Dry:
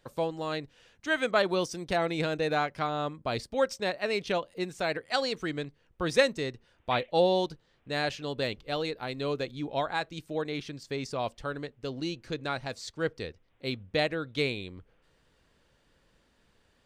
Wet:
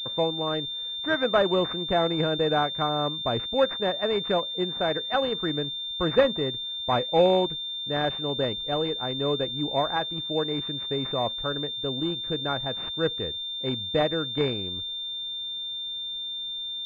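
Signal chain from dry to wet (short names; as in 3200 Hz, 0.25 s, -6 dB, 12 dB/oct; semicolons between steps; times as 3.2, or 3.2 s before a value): soft clip -12.5 dBFS, distortion -26 dB; pulse-width modulation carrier 3600 Hz; gain +5 dB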